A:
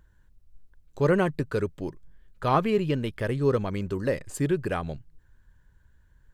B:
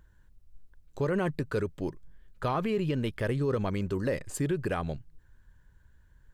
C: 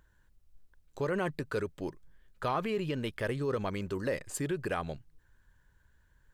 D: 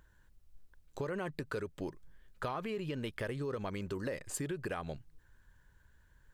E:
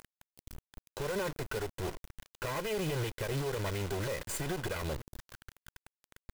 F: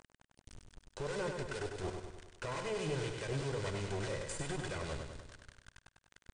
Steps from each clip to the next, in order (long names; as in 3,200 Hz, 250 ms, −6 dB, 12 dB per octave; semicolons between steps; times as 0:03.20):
brickwall limiter −20.5 dBFS, peak gain reduction 9.5 dB
low-shelf EQ 330 Hz −7.5 dB
downward compressor 4 to 1, threshold −37 dBFS, peak gain reduction 9 dB; level +1.5 dB
lower of the sound and its delayed copy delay 2 ms; brickwall limiter −36.5 dBFS, peak gain reduction 11 dB; log-companded quantiser 4 bits; level +9 dB
two-band tremolo in antiphase 4.8 Hz, depth 50%, crossover 1,300 Hz; linear-phase brick-wall low-pass 9,600 Hz; on a send: repeating echo 99 ms, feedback 56%, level −5.5 dB; on the sum: level −2.5 dB